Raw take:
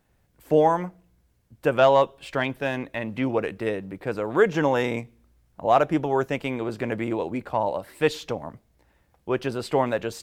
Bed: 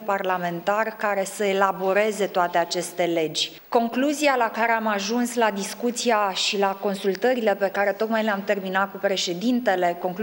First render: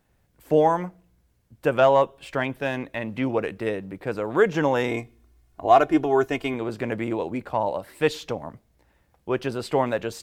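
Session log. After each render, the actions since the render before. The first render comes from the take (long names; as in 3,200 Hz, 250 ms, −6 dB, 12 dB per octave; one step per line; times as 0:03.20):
0:01.80–0:02.53: dynamic equaliser 4,100 Hz, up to −7 dB, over −45 dBFS, Q 1.6
0:04.89–0:06.54: comb filter 2.8 ms, depth 72%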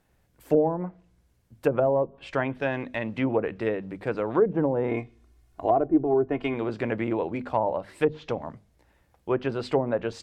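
mains-hum notches 50/100/150/200/250 Hz
treble cut that deepens with the level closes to 480 Hz, closed at −17 dBFS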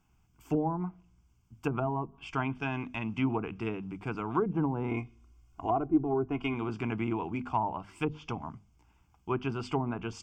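phaser with its sweep stopped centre 2,700 Hz, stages 8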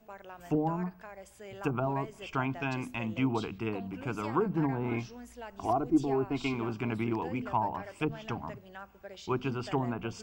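mix in bed −24 dB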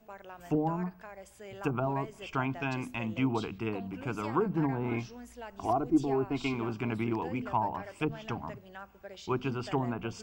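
no processing that can be heard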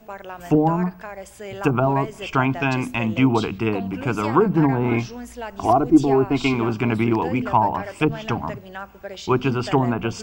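level +12 dB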